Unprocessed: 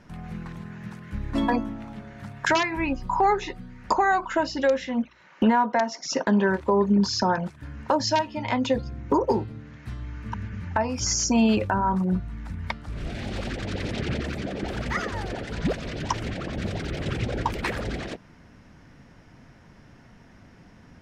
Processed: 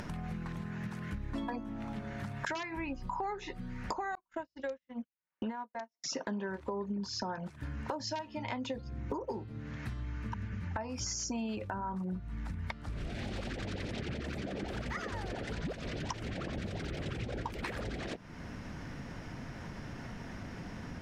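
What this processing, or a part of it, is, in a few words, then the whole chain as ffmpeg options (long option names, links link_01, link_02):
upward and downward compression: -filter_complex "[0:a]acompressor=mode=upward:threshold=-25dB:ratio=2.5,acompressor=threshold=-29dB:ratio=6,asettb=1/sr,asplit=3[link_01][link_02][link_03];[link_01]atrim=end=4.154[link_04];[link_02]atrim=start=4.15:end=6.04,asetpts=PTS-STARTPTS,afade=type=in:duration=0.004:curve=qsin,afade=type=out:start_time=1.886:duration=0.004:curve=qsin,agate=range=-46dB:threshold=-30dB:ratio=16:detection=peak[link_05];[link_03]atrim=start=6.036[link_06];[link_04][link_05]acrossfade=duration=0.004:curve1=hsin:curve2=qsin[link_07];[link_07][link_06]acrossfade=duration=0.004:curve1=qsin:curve2=hsin,volume=-5.5dB"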